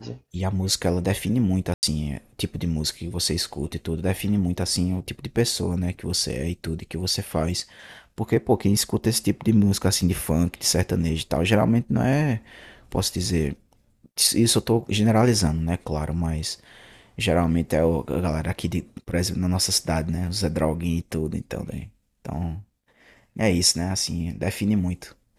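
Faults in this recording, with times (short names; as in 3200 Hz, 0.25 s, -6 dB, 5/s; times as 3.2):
1.74–1.83 gap 89 ms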